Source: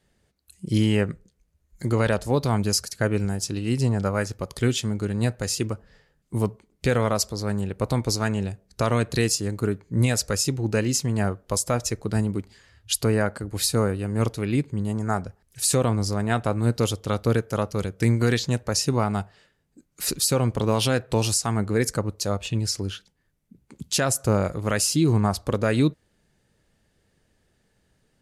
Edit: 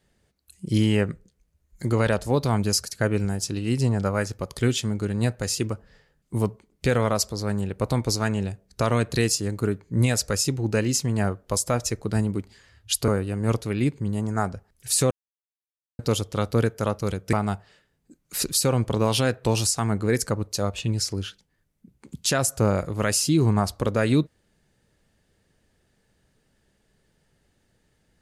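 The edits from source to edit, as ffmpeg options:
-filter_complex "[0:a]asplit=5[s0][s1][s2][s3][s4];[s0]atrim=end=13.082[s5];[s1]atrim=start=13.798:end=15.83,asetpts=PTS-STARTPTS,afade=t=out:st=2.028:d=0.004:c=hsin[s6];[s2]atrim=start=15.83:end=16.71,asetpts=PTS-STARTPTS,volume=0[s7];[s3]atrim=start=16.71:end=18.052,asetpts=PTS-STARTPTS,afade=t=in:d=0.004:c=hsin[s8];[s4]atrim=start=18.998[s9];[s6][s7][s8]concat=n=3:v=0:a=1[s10];[s5][s10]acrossfade=d=0.004:c1=hsin:c2=hsin[s11];[s11][s9]acrossfade=d=0.004:c1=hsin:c2=hsin"

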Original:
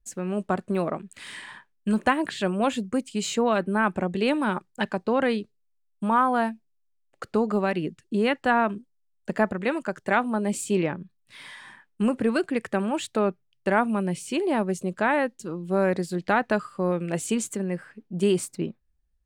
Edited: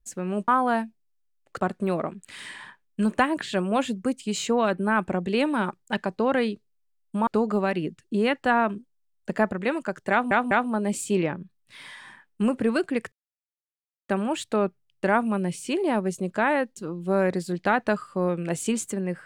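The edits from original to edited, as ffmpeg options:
-filter_complex "[0:a]asplit=7[s0][s1][s2][s3][s4][s5][s6];[s0]atrim=end=0.482[s7];[s1]atrim=start=6.148:end=7.272[s8];[s2]atrim=start=0.478:end=6.152[s9];[s3]atrim=start=7.268:end=10.312[s10];[s4]atrim=start=10.108:end=10.312[s11];[s5]atrim=start=10.108:end=12.72,asetpts=PTS-STARTPTS,afade=t=out:st=2.608:d=0.004:c=hsin,apad=pad_dur=0.97[s12];[s6]atrim=start=12.72,asetpts=PTS-STARTPTS,afade=t=in:d=0.004:c=hsin[s13];[s7][s8]acrossfade=d=0.004:c1=hsin:c2=hsin[s14];[s14][s9]acrossfade=d=0.004:c1=hsin:c2=hsin[s15];[s15][s10]acrossfade=d=0.004:c1=hsin:c2=hsin[s16];[s16][s11]acrossfade=d=0.004:c1=hsin:c2=hsin[s17];[s12][s13]concat=n=2:v=0:a=1[s18];[s17][s18]acrossfade=d=0.004:c1=hsin:c2=hsin"

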